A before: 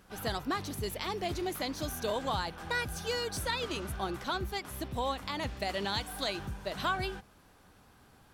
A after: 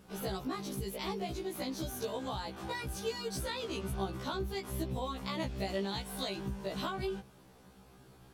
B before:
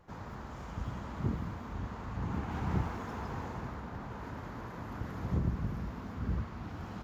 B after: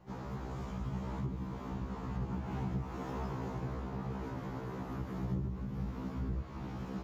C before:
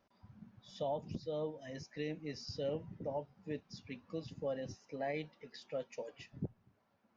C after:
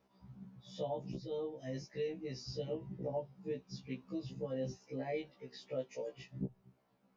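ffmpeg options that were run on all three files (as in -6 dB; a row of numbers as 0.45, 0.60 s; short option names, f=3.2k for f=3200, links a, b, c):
-af "equalizer=f=160:t=o:w=0.67:g=7,equalizer=f=400:t=o:w=0.67:g=5,equalizer=f=1.6k:t=o:w=0.67:g=-4,acompressor=threshold=-34dB:ratio=5,afftfilt=real='re*1.73*eq(mod(b,3),0)':imag='im*1.73*eq(mod(b,3),0)':win_size=2048:overlap=0.75,volume=2.5dB"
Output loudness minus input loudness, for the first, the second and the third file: -3.0, -1.0, +0.5 LU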